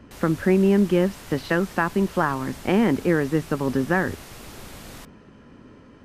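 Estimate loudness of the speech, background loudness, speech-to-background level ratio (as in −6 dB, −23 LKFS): −22.5 LKFS, −41.5 LKFS, 19.0 dB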